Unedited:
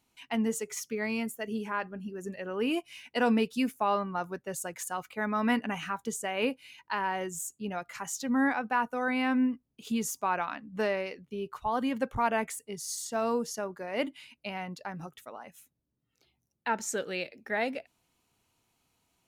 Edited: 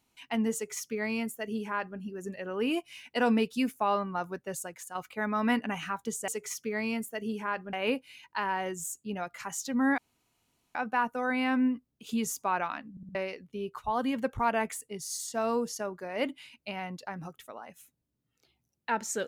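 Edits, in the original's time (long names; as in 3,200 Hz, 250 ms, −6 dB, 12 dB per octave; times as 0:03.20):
0:00.54–0:01.99: duplicate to 0:06.28
0:04.55–0:04.95: fade out quadratic, to −7.5 dB
0:08.53: splice in room tone 0.77 s
0:10.69: stutter in place 0.06 s, 4 plays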